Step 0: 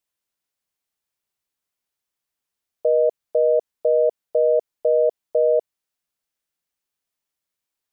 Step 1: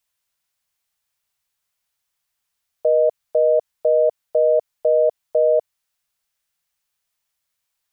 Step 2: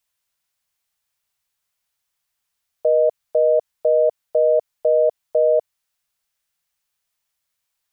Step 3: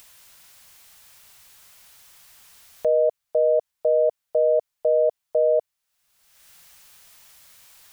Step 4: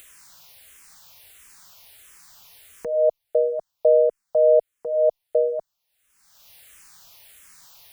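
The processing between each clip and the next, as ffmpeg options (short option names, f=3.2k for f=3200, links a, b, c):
-af "equalizer=f=320:w=1.1:g=-13.5,volume=7dB"
-af anull
-af "acompressor=mode=upward:threshold=-25dB:ratio=2.5,volume=-3dB"
-filter_complex "[0:a]asplit=2[a][b];[b]afreqshift=-1.5[c];[a][c]amix=inputs=2:normalize=1,volume=4.5dB"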